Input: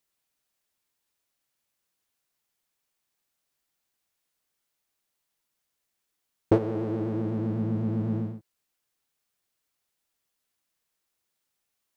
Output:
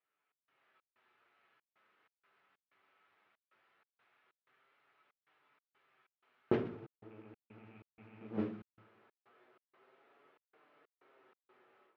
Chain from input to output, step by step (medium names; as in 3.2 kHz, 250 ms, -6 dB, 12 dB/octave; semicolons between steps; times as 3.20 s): rattle on loud lows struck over -27 dBFS, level -30 dBFS; inverted gate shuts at -22 dBFS, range -35 dB; flange 0.19 Hz, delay 6.5 ms, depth 4.1 ms, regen +52%; simulated room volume 60 m³, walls mixed, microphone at 0.75 m; level rider gain up to 16 dB; peaking EQ 400 Hz -9.5 dB 2.3 oct, from 8.21 s +5 dB; modulation noise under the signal 16 dB; cabinet simulation 240–2500 Hz, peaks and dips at 400 Hz +8 dB, 730 Hz +4 dB, 1.3 kHz +7 dB; trance gate "xx.xx.xxxx." 94 bpm -60 dB; trim +1 dB